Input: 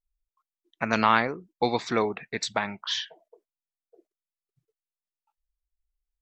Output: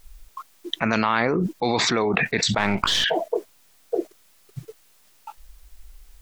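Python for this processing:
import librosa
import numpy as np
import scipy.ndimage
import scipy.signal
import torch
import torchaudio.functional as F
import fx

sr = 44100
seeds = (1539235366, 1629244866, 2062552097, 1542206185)

y = fx.halfwave_gain(x, sr, db=-7.0, at=(2.58, 3.04))
y = fx.env_flatten(y, sr, amount_pct=100)
y = y * 10.0 ** (-3.0 / 20.0)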